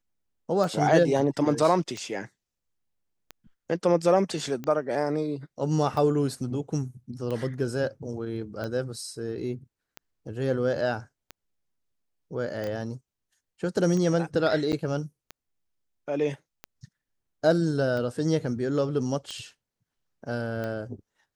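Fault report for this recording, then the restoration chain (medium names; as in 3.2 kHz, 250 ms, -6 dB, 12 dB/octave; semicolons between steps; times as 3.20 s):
tick 45 rpm
12.67 s: pop -23 dBFS
14.72–14.73 s: dropout 8.9 ms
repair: de-click; interpolate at 14.72 s, 8.9 ms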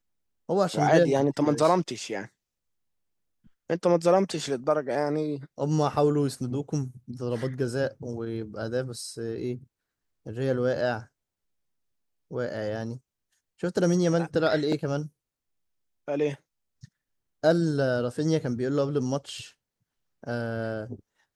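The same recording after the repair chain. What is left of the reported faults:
12.67 s: pop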